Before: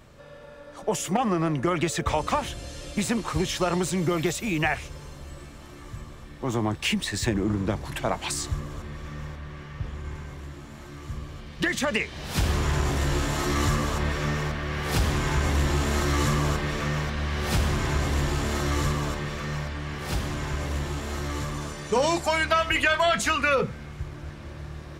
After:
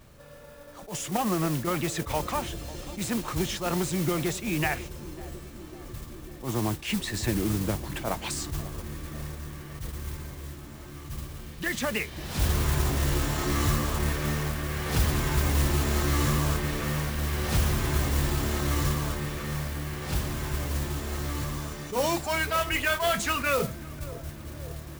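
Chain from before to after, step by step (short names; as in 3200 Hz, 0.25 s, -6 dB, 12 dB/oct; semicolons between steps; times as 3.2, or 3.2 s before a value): low shelf 180 Hz +4 dB; modulation noise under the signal 12 dB; on a send: narrowing echo 0.548 s, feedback 78%, band-pass 350 Hz, level -15 dB; on the sum: attack slew limiter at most 170 dB/s; gain -3.5 dB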